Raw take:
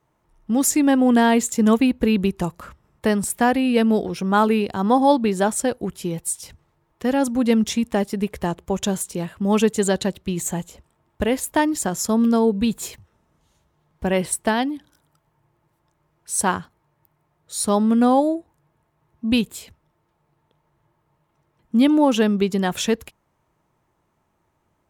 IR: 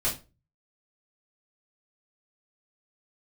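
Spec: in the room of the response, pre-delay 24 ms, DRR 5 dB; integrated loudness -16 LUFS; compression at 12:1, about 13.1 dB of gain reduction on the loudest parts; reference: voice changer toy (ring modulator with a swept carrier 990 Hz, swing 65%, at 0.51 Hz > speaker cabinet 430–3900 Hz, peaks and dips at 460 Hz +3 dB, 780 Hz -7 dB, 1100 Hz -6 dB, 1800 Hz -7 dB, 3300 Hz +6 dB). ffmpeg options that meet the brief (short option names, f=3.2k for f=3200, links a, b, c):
-filter_complex "[0:a]acompressor=threshold=-25dB:ratio=12,asplit=2[a][b];[1:a]atrim=start_sample=2205,adelay=24[c];[b][c]afir=irnorm=-1:irlink=0,volume=-13dB[d];[a][d]amix=inputs=2:normalize=0,aeval=exprs='val(0)*sin(2*PI*990*n/s+990*0.65/0.51*sin(2*PI*0.51*n/s))':c=same,highpass=430,equalizer=f=460:t=q:w=4:g=3,equalizer=f=780:t=q:w=4:g=-7,equalizer=f=1.1k:t=q:w=4:g=-6,equalizer=f=1.8k:t=q:w=4:g=-7,equalizer=f=3.3k:t=q:w=4:g=6,lowpass=f=3.9k:w=0.5412,lowpass=f=3.9k:w=1.3066,volume=19.5dB"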